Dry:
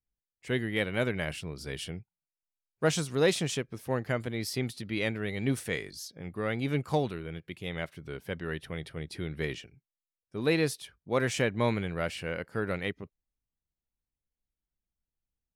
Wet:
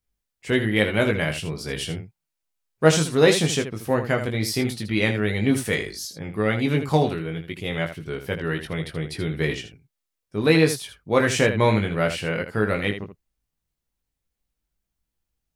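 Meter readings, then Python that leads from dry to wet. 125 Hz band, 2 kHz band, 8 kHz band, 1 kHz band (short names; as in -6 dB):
+9.0 dB, +9.0 dB, +9.0 dB, +9.5 dB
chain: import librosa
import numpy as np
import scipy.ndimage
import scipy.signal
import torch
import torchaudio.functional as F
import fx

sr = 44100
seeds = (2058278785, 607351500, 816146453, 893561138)

y = fx.room_early_taps(x, sr, ms=(19, 79), db=(-5.0, -9.5))
y = y * librosa.db_to_amplitude(7.5)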